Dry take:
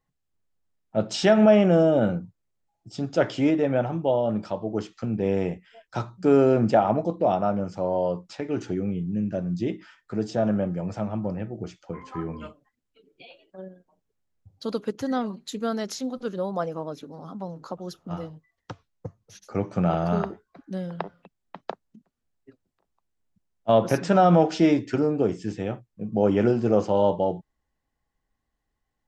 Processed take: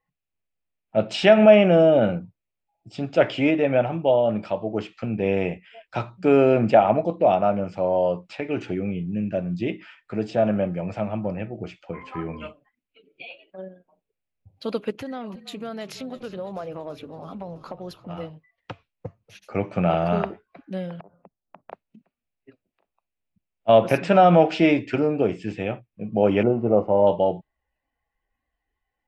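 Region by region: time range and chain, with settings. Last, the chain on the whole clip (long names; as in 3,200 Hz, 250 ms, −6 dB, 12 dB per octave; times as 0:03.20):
0:14.95–0:18.18: downward compressor, threshold −31 dBFS + echo with shifted repeats 330 ms, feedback 56%, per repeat −42 Hz, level −16 dB
0:21.00–0:21.72: low-pass filter 1,100 Hz 24 dB per octave + downward compressor 8 to 1, threshold −43 dBFS
0:26.43–0:27.07: mu-law and A-law mismatch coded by A + Savitzky-Golay smoothing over 65 samples
whole clip: graphic EQ with 15 bands 630 Hz +5 dB, 2,500 Hz +12 dB, 6,300 Hz −9 dB; noise reduction from a noise print of the clip's start 8 dB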